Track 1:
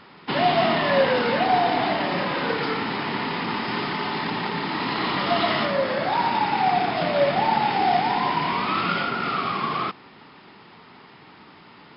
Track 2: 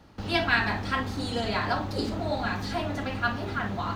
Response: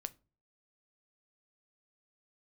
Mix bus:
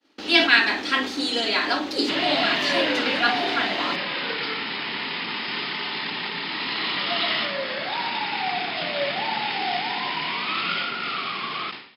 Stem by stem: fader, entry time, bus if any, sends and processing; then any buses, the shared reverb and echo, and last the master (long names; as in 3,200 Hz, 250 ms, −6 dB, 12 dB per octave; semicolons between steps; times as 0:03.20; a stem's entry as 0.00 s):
−7.0 dB, 1.80 s, no send, no processing
−0.5 dB, 0.00 s, send −14 dB, low shelf with overshoot 200 Hz −13 dB, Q 3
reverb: on, pre-delay 7 ms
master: meter weighting curve D; downward expander −42 dBFS; level that may fall only so fast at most 98 dB per second